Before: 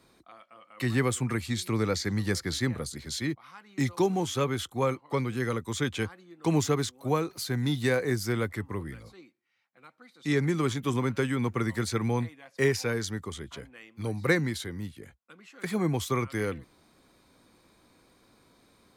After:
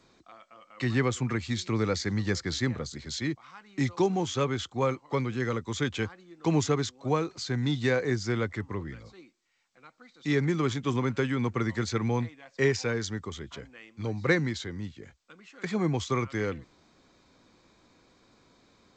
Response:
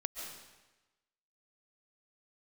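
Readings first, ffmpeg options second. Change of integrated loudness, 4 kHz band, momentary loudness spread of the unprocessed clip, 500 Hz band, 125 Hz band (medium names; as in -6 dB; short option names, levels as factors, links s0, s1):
0.0 dB, 0.0 dB, 11 LU, 0.0 dB, 0.0 dB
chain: -ar 16000 -c:a g722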